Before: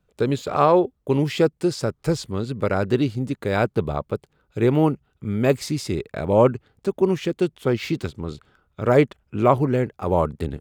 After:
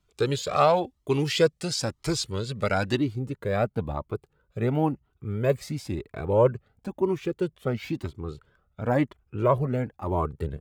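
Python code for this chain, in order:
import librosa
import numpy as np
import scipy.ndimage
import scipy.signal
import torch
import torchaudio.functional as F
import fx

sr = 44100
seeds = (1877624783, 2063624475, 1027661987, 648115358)

y = fx.peak_eq(x, sr, hz=5400.0, db=fx.steps((0.0, 9.5), (2.97, -6.0)), octaves=2.7)
y = fx.comb_cascade(y, sr, direction='rising', hz=0.99)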